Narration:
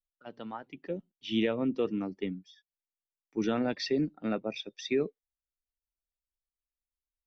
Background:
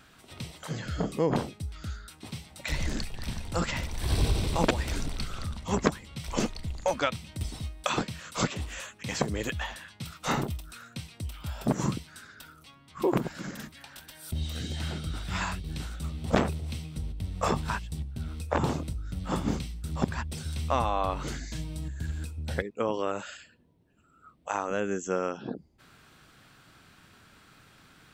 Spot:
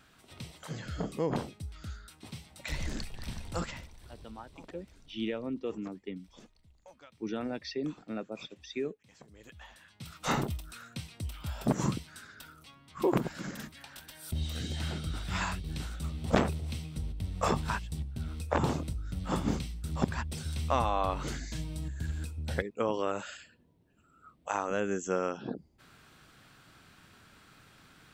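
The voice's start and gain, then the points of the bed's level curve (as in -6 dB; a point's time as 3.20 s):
3.85 s, -6.0 dB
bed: 3.58 s -5 dB
4.19 s -27.5 dB
9.21 s -27.5 dB
10.23 s -1.5 dB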